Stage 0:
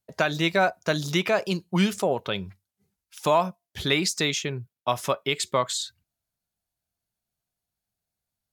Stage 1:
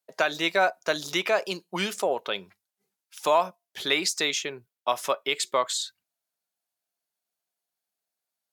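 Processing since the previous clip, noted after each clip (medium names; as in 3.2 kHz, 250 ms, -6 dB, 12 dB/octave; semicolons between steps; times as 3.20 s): high-pass 390 Hz 12 dB/octave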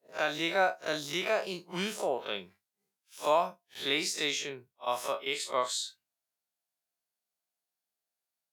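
spectral blur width 80 ms; trim -2 dB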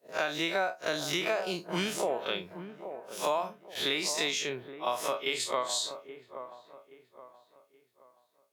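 compression 4:1, threshold -35 dBFS, peak gain reduction 12 dB; feedback echo behind a low-pass 825 ms, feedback 35%, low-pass 1.2 kHz, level -10 dB; trim +7 dB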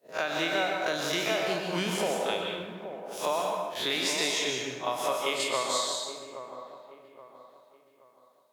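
plate-style reverb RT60 1.2 s, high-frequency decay 0.8×, pre-delay 110 ms, DRR 0.5 dB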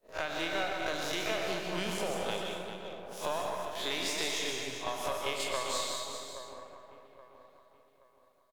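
partial rectifier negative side -7 dB; delay 396 ms -9 dB; trim -3 dB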